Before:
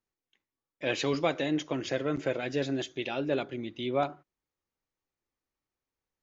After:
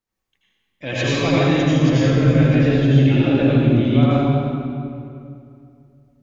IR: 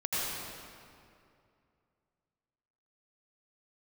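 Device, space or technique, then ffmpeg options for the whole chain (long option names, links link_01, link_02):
stairwell: -filter_complex "[0:a]asettb=1/sr,asplit=3[link_01][link_02][link_03];[link_01]atrim=end=2.044[link_04];[link_02]atrim=start=2.04:end=3.85,asetpts=PTS-STARTPTS,afade=type=in:duration=0.004:curve=qsin,afade=type=out:start_time=1.806:duration=0.004:curve=qsin,acrossover=split=4100[link_05][link_06];[link_06]acompressor=threshold=-58dB:ratio=4:attack=1:release=60[link_07];[link_05][link_07]amix=inputs=2:normalize=0[link_08];[link_03]atrim=start=3.846[link_09];[link_04][link_08]acrossfade=duration=0.004:curve1=hsin:curve2=qsin[link_10];[link_10][link_09]acrossfade=duration=0.004:curve1=qsin:curve2=hsin[link_11];[1:a]atrim=start_sample=2205[link_12];[link_11][link_12]afir=irnorm=-1:irlink=0,bandreject=frequency=380:width=12,asubboost=boost=9.5:cutoff=220,volume=3.5dB"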